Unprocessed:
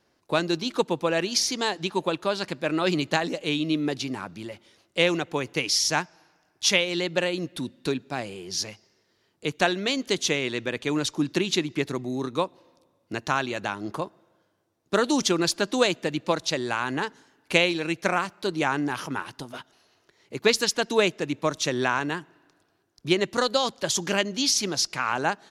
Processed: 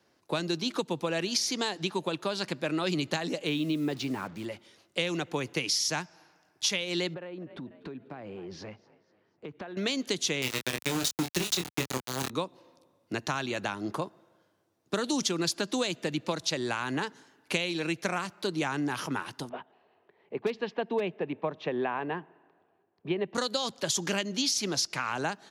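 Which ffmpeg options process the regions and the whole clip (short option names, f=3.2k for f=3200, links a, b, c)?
-filter_complex "[0:a]asettb=1/sr,asplit=3[a][b][c];[a]atrim=end=3.474[d];[b]atrim=start=3.47:end=4.45,asetpts=PTS-STARTPTS,afade=t=in:d=0.004:c=qsin,afade=t=out:st=0.976:d=0.004:c=qsin,lowpass=f=3k:p=1,acrusher=bits=7:mix=0:aa=0.5[e];[c]atrim=start=4.446[f];[d][e]acrossfade=d=0.004:c1=hsin:c2=qsin[g];[g][f]acrossfade=d=0.004:c1=qsin:c2=hsin,asettb=1/sr,asplit=3[h][i][j];[h]atrim=end=7.144[k];[i]atrim=start=7.14:end=9.77,asetpts=PTS-STARTPTS,afade=t=in:d=0.004:c=qsin,afade=t=out:st=2.626:d=0.004:c=qsin,lowpass=1.6k,asplit=4[l][m][n][o];[m]adelay=245,afreqshift=46,volume=-24dB[p];[n]adelay=490,afreqshift=92,volume=-30.9dB[q];[o]adelay=735,afreqshift=138,volume=-37.9dB[r];[l][p][q][r]amix=inputs=4:normalize=0,atrim=end_sample=115983,acompressor=threshold=-36dB:ratio=12:attack=3.2:release=140:knee=1:detection=peak[s];[j]atrim=start=9.766[t];[k][s]acrossfade=d=0.004:c1=hsin:c2=qsin[u];[u][t]acrossfade=d=0.004:c1=qsin:c2=hsin,asettb=1/sr,asplit=3[v][w][x];[v]atrim=end=10.424[y];[w]atrim=start=10.42:end=12.3,asetpts=PTS-STARTPTS,afade=t=in:d=0.004:c=qsin,afade=t=out:st=1.876:d=0.004:c=qsin,bass=f=250:g=3,treble=f=4k:g=8,aeval=exprs='val(0)*gte(abs(val(0)),0.0841)':c=same,asplit=2[z][aa];[aa]adelay=23,volume=-6dB[ab];[z][ab]amix=inputs=2:normalize=0,atrim=end_sample=82908[ac];[x]atrim=start=12.296[ad];[y][ac]acrossfade=d=0.004:c1=hsin:c2=qsin[ae];[ae][ad]acrossfade=d=0.004:c1=qsin:c2=hsin,asettb=1/sr,asplit=3[af][ag][ah];[af]atrim=end=19.494[ai];[ag]atrim=start=19.49:end=23.35,asetpts=PTS-STARTPTS,afade=t=in:d=0.004:c=qsin,afade=t=out:st=3.856:d=0.004:c=qsin,highpass=120,equalizer=f=130:t=q:w=4:g=-8,equalizer=f=300:t=q:w=4:g=-6,equalizer=f=420:t=q:w=4:g=4,equalizer=f=770:t=q:w=4:g=5,equalizer=f=1.4k:t=q:w=4:g=-8,equalizer=f=2.1k:t=q:w=4:g=-5,lowpass=f=2.4k:w=0.5412,lowpass=f=2.4k:w=1.3066,asoftclip=type=hard:threshold=-11dB[aj];[ah]atrim=start=23.346[ak];[ai][aj]acrossfade=d=0.004:c1=hsin:c2=qsin[al];[al][ak]acrossfade=d=0.004:c1=qsin:c2=hsin,acrossover=split=230|3000[am][an][ao];[an]acompressor=threshold=-30dB:ratio=2[ap];[am][ap][ao]amix=inputs=3:normalize=0,highpass=85,acompressor=threshold=-25dB:ratio=6"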